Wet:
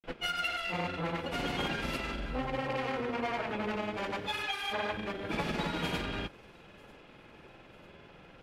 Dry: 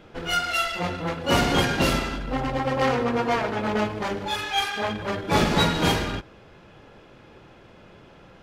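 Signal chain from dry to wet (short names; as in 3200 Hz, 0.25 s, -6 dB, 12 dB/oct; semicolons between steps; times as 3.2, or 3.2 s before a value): fifteen-band EQ 100 Hz -5 dB, 2500 Hz +5 dB, 6300 Hz -4 dB; compressor, threshold -26 dBFS, peak gain reduction 10.5 dB; grains, pitch spread up and down by 0 st; thin delay 0.945 s, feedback 56%, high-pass 5500 Hz, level -21 dB; gain -3.5 dB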